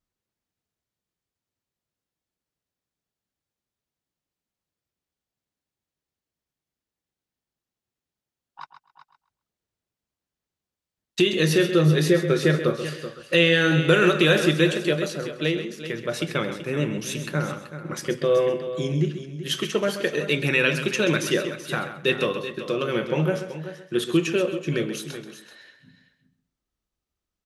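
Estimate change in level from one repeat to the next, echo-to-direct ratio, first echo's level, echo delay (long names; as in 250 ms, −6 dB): repeats not evenly spaced, −8.0 dB, −10.5 dB, 132 ms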